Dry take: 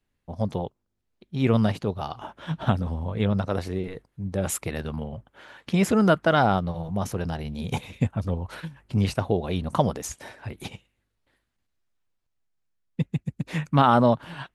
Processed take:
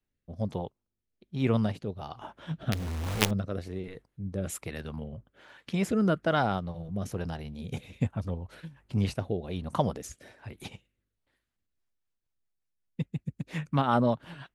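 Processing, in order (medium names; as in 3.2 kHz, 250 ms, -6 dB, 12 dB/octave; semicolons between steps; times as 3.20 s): 2.72–3.31 s: companded quantiser 2-bit; rotary cabinet horn 1.2 Hz, later 5.5 Hz, at 11.34 s; trim -4.5 dB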